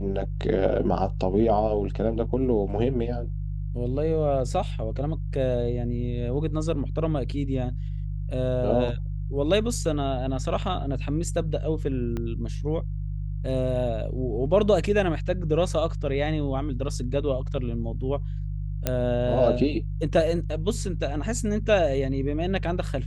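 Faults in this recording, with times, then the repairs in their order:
hum 50 Hz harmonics 3 -30 dBFS
12.17 s: pop -19 dBFS
18.87 s: pop -9 dBFS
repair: de-click; de-hum 50 Hz, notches 3

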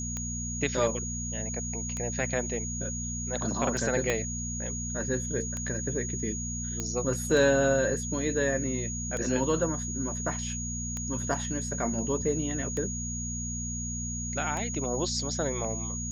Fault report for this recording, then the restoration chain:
hum 60 Hz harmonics 4 -36 dBFS
tick 33 1/3 rpm -20 dBFS
whine 6.7 kHz -35 dBFS
4.10 s: pop -12 dBFS
6.80 s: pop -17 dBFS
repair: de-click; de-hum 60 Hz, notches 4; band-stop 6.7 kHz, Q 30

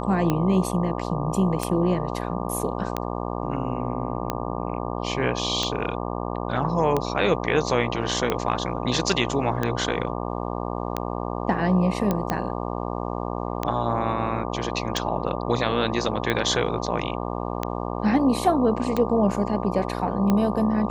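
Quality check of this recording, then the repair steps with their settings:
buzz 60 Hz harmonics 20 -29 dBFS
tick 45 rpm -10 dBFS
12.11 s: pop -10 dBFS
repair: de-click; de-hum 60 Hz, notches 20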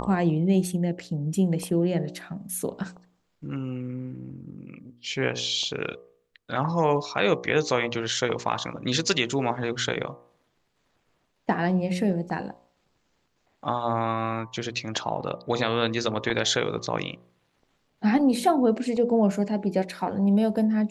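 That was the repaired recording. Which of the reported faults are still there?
nothing left

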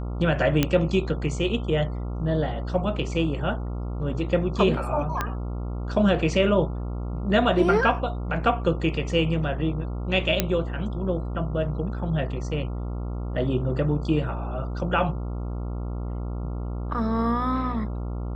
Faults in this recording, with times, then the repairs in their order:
buzz 60 Hz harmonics 23 -30 dBFS
0.63 s: pop -6 dBFS
5.21 s: pop -11 dBFS
10.40 s: pop -4 dBFS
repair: de-click; de-hum 60 Hz, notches 23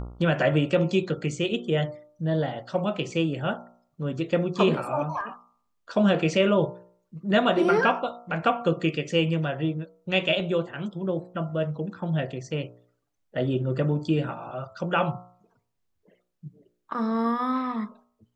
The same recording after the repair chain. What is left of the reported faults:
5.21 s: pop

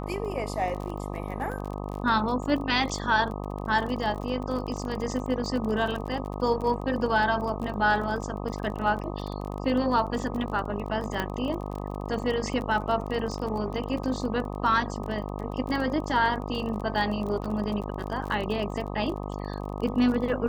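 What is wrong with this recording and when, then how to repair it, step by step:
buzz 50 Hz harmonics 25 -34 dBFS
crackle 31 per s -33 dBFS
11.20 s: pop -14 dBFS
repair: de-click; de-hum 50 Hz, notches 25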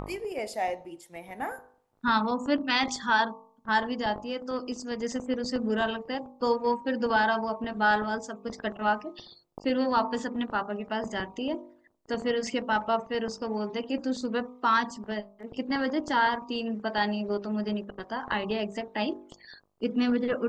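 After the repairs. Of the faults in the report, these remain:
nothing left

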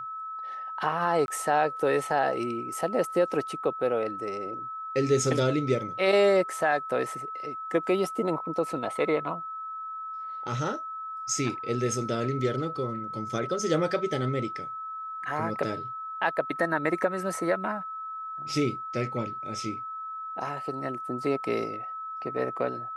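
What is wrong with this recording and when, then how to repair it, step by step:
whine 1.3 kHz -34 dBFS
1.26–1.28 s: dropout 21 ms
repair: band-stop 1.3 kHz, Q 30; interpolate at 1.26 s, 21 ms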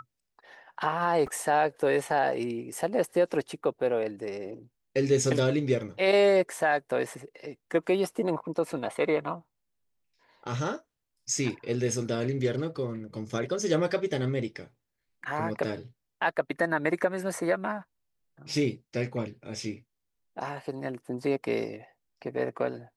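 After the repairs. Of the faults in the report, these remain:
nothing left

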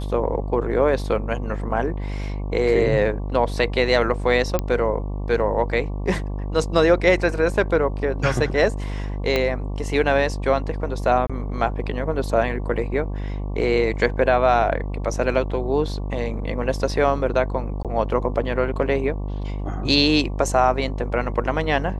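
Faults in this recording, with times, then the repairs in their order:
buzz 50 Hz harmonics 23 -27 dBFS
4.59 s: pop -9 dBFS
9.36 s: pop -8 dBFS
11.27–11.30 s: dropout 26 ms
17.83–17.85 s: dropout 17 ms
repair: de-click; de-hum 50 Hz, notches 23; interpolate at 11.27 s, 26 ms; interpolate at 17.83 s, 17 ms

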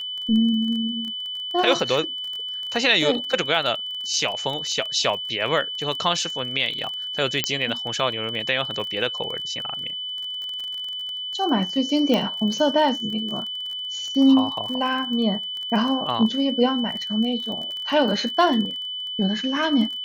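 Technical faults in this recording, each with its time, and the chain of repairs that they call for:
crackle 27 per s -29 dBFS
whine 3 kHz -28 dBFS
7.44 s: pop -3 dBFS
12.14 s: pop -10 dBFS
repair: de-click; band-stop 3 kHz, Q 30

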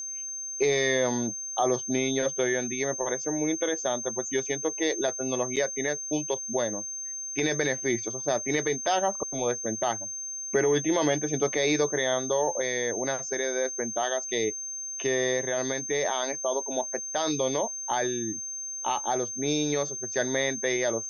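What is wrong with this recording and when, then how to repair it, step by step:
whine 6.3 kHz -33 dBFS
5.56–5.57 s: dropout 6.9 ms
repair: band-stop 6.3 kHz, Q 30; interpolate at 5.56 s, 6.9 ms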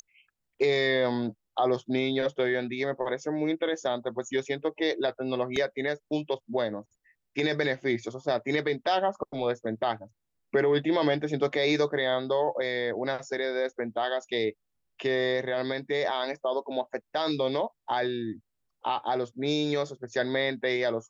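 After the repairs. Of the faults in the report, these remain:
nothing left

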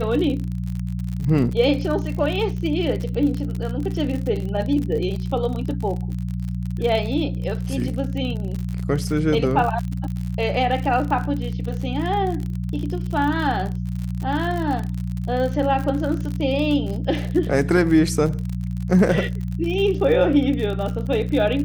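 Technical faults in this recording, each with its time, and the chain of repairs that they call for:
crackle 55 per s -27 dBFS
hum 60 Hz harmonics 3 -26 dBFS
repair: de-click; de-hum 60 Hz, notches 3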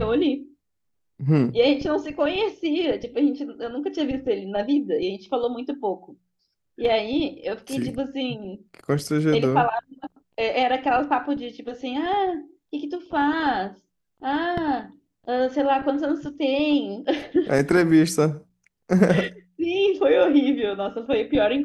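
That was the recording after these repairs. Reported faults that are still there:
nothing left

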